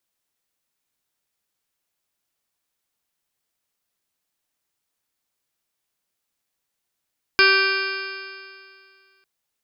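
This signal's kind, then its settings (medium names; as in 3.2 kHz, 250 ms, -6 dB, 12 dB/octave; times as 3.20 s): stretched partials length 1.85 s, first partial 385 Hz, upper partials -18/-1.5/5.5/-11/3.5/-4/-8.5/-12.5/-14/-1.5/-1 dB, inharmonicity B 0.0013, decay 2.22 s, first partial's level -20 dB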